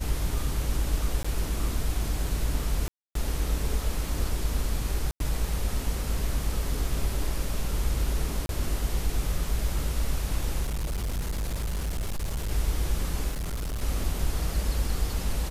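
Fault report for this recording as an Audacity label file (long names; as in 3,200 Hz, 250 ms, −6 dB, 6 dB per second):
1.230000	1.250000	drop-out 15 ms
2.880000	3.150000	drop-out 273 ms
5.110000	5.200000	drop-out 92 ms
8.460000	8.490000	drop-out 32 ms
10.630000	12.510000	clipping −26 dBFS
13.310000	13.830000	clipping −28 dBFS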